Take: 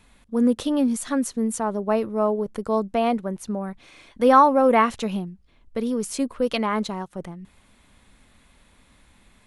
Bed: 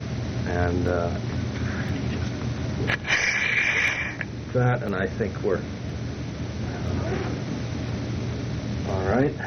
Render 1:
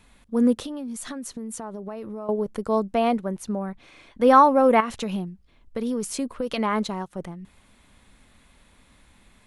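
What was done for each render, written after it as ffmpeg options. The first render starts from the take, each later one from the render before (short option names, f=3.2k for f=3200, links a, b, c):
-filter_complex "[0:a]asettb=1/sr,asplit=3[a][b][c];[a]atrim=end=0.544[d];[b]atrim=start=0.54:end=2.29,asetpts=PTS-STARTPTS,afade=t=in:d=0.004:c=qsin,afade=t=out:st=1.746:d=0.004:c=qsin,acompressor=threshold=-30dB:ratio=12:attack=3.2:release=140:knee=1:detection=peak[e];[c]atrim=start=2.286[f];[d][e]acrossfade=d=0.004:c1=hsin:c2=qsin[g];[g][f]acrossfade=d=0.004:c1=qsin:c2=hsin,asettb=1/sr,asplit=3[h][i][j];[h]atrim=end=3.634[k];[i]atrim=start=3.63:end=4.28,asetpts=PTS-STARTPTS,afade=t=in:d=0.004:c=qsin,afade=t=out:st=0.646:d=0.004:c=qsin,highshelf=f=4.4k:g=-6.5[l];[j]atrim=start=4.276[m];[k][l]acrossfade=d=0.004:c1=hsin:c2=qsin[n];[n][m]acrossfade=d=0.004:c1=qsin:c2=hsin,asettb=1/sr,asplit=3[o][p][q];[o]atrim=end=4.804[r];[p]atrim=start=4.8:end=6.58,asetpts=PTS-STARTPTS,afade=t=in:d=0.004:c=qsin,afade=t=out:st=1.776:d=0.004:c=qsin,acompressor=threshold=-22dB:ratio=12:attack=3.2:release=140:knee=1:detection=peak[s];[q]atrim=start=6.576[t];[r][s]acrossfade=d=0.004:c1=hsin:c2=qsin[u];[u][t]acrossfade=d=0.004:c1=qsin:c2=hsin"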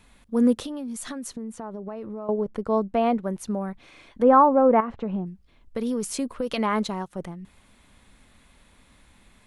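-filter_complex "[0:a]asettb=1/sr,asplit=3[a][b][c];[a]atrim=end=1.364[d];[b]atrim=start=1.36:end=3.24,asetpts=PTS-STARTPTS,afade=t=in:d=0.004:c=qsin,afade=t=out:st=1.876:d=0.004:c=qsin,lowpass=f=2.1k:p=1[e];[c]atrim=start=3.236[f];[d][e]acrossfade=d=0.004:c1=hsin:c2=qsin[g];[g][f]acrossfade=d=0.004:c1=qsin:c2=hsin,asettb=1/sr,asplit=3[h][i][j];[h]atrim=end=4.224[k];[i]atrim=start=4.22:end=5.26,asetpts=PTS-STARTPTS,afade=t=in:d=0.004:c=qsin,afade=t=out:st=1.036:d=0.004:c=qsin,lowpass=1.2k[l];[j]atrim=start=5.256[m];[k][l]acrossfade=d=0.004:c1=hsin:c2=qsin[n];[n][m]acrossfade=d=0.004:c1=qsin:c2=hsin"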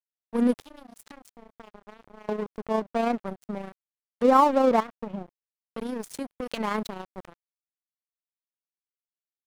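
-af "tremolo=f=28:d=0.333,aeval=exprs='sgn(val(0))*max(abs(val(0))-0.0237,0)':c=same"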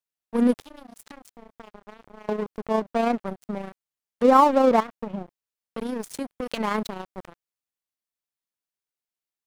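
-af "volume=2.5dB"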